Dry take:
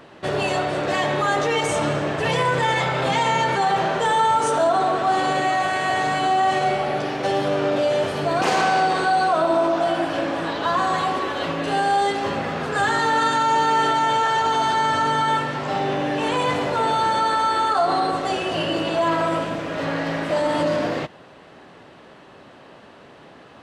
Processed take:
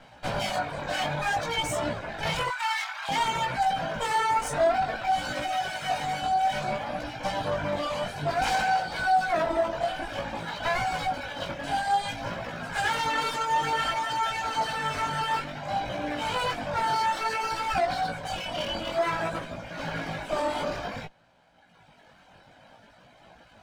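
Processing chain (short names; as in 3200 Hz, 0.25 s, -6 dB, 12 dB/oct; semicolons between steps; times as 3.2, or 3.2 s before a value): minimum comb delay 1.3 ms; reverb removal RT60 2 s; 2.48–3.09 elliptic high-pass 910 Hz, stop band 80 dB; chorus 0.56 Hz, delay 16.5 ms, depth 5.1 ms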